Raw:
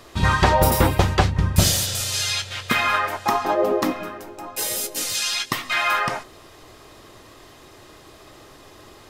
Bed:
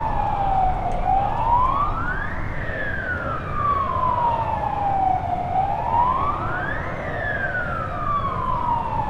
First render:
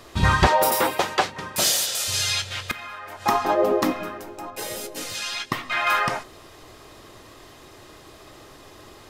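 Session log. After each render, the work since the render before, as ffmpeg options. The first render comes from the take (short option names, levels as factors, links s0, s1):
-filter_complex "[0:a]asettb=1/sr,asplit=3[s0][s1][s2];[s0]atrim=end=0.474[s3];[s1]atrim=start=0.47:end=2.08,asetpts=PTS-STARTPTS,afade=t=in:d=0.004:c=qsin,afade=t=out:st=1.606:d=0.004:c=qsin,highpass=430[s4];[s2]atrim=start=2.076[s5];[s3][s4]acrossfade=d=0.004:c1=hsin:c2=qsin[s6];[s6][s5]acrossfade=d=0.004:c1=qsin:c2=hsin,asettb=1/sr,asplit=3[s7][s8][s9];[s7]atrim=end=2.714[s10];[s8]atrim=start=2.71:end=3.25,asetpts=PTS-STARTPTS,afade=t=in:d=0.004:c=qsin,afade=t=out:st=0.536:d=0.004:c=qsin,acompressor=threshold=0.0224:ratio=12:attack=3.2:release=140:knee=1:detection=peak[s11];[s9]atrim=start=3.246[s12];[s10][s11]acrossfade=d=0.004:c1=hsin:c2=qsin[s13];[s13][s12]acrossfade=d=0.004:c1=qsin:c2=hsin,asettb=1/sr,asplit=3[s14][s15][s16];[s14]atrim=end=4.504[s17];[s15]atrim=start=4.5:end=5.87,asetpts=PTS-STARTPTS,afade=t=in:d=0.004:c=qsin,afade=t=out:st=1.366:d=0.004:c=qsin,highshelf=f=3500:g=-11[s18];[s16]atrim=start=5.866[s19];[s17][s18]acrossfade=d=0.004:c1=hsin:c2=qsin[s20];[s20][s19]acrossfade=d=0.004:c1=qsin:c2=hsin"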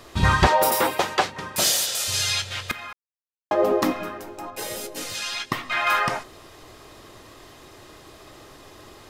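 -filter_complex "[0:a]asplit=3[s0][s1][s2];[s0]atrim=end=2.93,asetpts=PTS-STARTPTS,afade=t=out:st=2.926:d=0.004:c=hsin[s3];[s1]atrim=start=2.93:end=3.51,asetpts=PTS-STARTPTS,volume=0[s4];[s2]atrim=start=3.51,asetpts=PTS-STARTPTS,afade=t=in:d=0.004:c=hsin[s5];[s3][s4][s5]concat=n=3:v=0:a=1"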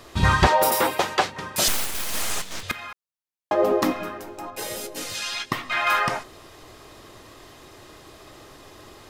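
-filter_complex "[0:a]asettb=1/sr,asplit=3[s0][s1][s2];[s0]atrim=end=1.684[s3];[s1]atrim=start=1.68:end=2.63,asetpts=PTS-STARTPTS,afade=t=in:d=0.004:c=qsin,afade=t=out:st=0.946:d=0.004:c=qsin,aeval=exprs='abs(val(0))':c=same[s4];[s2]atrim=start=2.626[s5];[s3][s4]acrossfade=d=0.004:c1=hsin:c2=qsin[s6];[s6][s5]acrossfade=d=0.004:c1=qsin:c2=hsin"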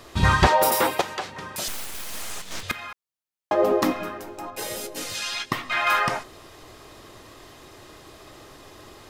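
-filter_complex "[0:a]asettb=1/sr,asplit=3[s0][s1][s2];[s0]atrim=end=1.014[s3];[s1]atrim=start=1.01:end=2.48,asetpts=PTS-STARTPTS,afade=t=in:d=0.004:c=qsin,afade=t=out:st=1.466:d=0.004:c=qsin,acompressor=threshold=0.0224:ratio=2:attack=3.2:release=140:knee=1:detection=peak[s4];[s2]atrim=start=2.476[s5];[s3][s4]acrossfade=d=0.004:c1=hsin:c2=qsin[s6];[s6][s5]acrossfade=d=0.004:c1=qsin:c2=hsin"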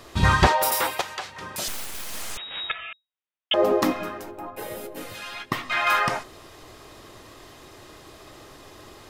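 -filter_complex "[0:a]asettb=1/sr,asplit=3[s0][s1][s2];[s0]atrim=end=0.524[s3];[s1]atrim=start=0.52:end=1.41,asetpts=PTS-STARTPTS,afade=t=in:d=0.004:c=qsin,afade=t=out:st=0.886:d=0.004:c=qsin,equalizer=f=260:t=o:w=2.6:g=-10[s4];[s2]atrim=start=1.406[s5];[s3][s4]acrossfade=d=0.004:c1=hsin:c2=qsin[s6];[s6][s5]acrossfade=d=0.004:c1=qsin:c2=hsin,asettb=1/sr,asplit=3[s7][s8][s9];[s7]atrim=end=2.374[s10];[s8]atrim=start=2.37:end=3.54,asetpts=PTS-STARTPTS,afade=t=in:d=0.004:c=qsin,afade=t=out:st=1.166:d=0.004:c=qsin,lowpass=f=3200:t=q:w=0.5098,lowpass=f=3200:t=q:w=0.6013,lowpass=f=3200:t=q:w=0.9,lowpass=f=3200:t=q:w=2.563,afreqshift=-3800[s11];[s9]atrim=start=3.536[s12];[s10][s11]acrossfade=d=0.004:c1=hsin:c2=qsin[s13];[s13][s12]acrossfade=d=0.004:c1=qsin:c2=hsin,asplit=3[s14][s15][s16];[s14]afade=t=out:st=4.3:d=0.02[s17];[s15]equalizer=f=6000:w=0.63:g=-15,afade=t=in:st=4.3:d=0.02,afade=t=out:st=5.51:d=0.02[s18];[s16]afade=t=in:st=5.51:d=0.02[s19];[s17][s18][s19]amix=inputs=3:normalize=0"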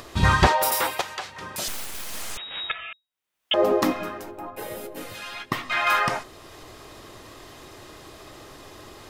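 -af "acompressor=mode=upward:threshold=0.0112:ratio=2.5"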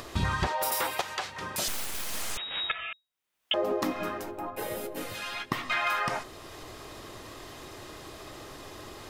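-af "acompressor=threshold=0.0562:ratio=8"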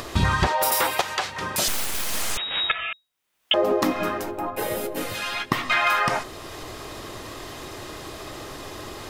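-af "volume=2.37"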